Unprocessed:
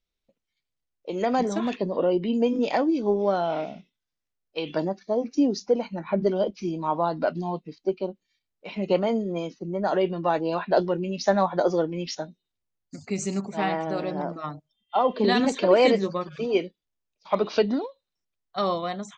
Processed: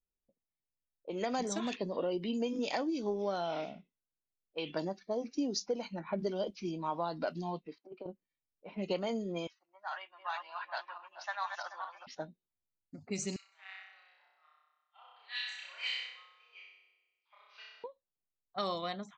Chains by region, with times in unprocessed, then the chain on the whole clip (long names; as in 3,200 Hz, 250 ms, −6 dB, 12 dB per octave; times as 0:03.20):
0:07.66–0:08.06: Bessel high-pass filter 450 Hz + compressor whose output falls as the input rises −34 dBFS, ratio −0.5
0:09.47–0:12.07: feedback delay that plays each chunk backwards 216 ms, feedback 46%, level −6 dB + inverse Chebyshev high-pass filter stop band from 470 Hz
0:13.36–0:17.84: four-pole ladder high-pass 1,900 Hz, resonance 30% + flutter between parallel walls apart 5.4 metres, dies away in 1.5 s
whole clip: low-pass that shuts in the quiet parts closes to 660 Hz, open at −20.5 dBFS; first-order pre-emphasis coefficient 0.8; downward compressor 2.5 to 1, threshold −37 dBFS; level +5.5 dB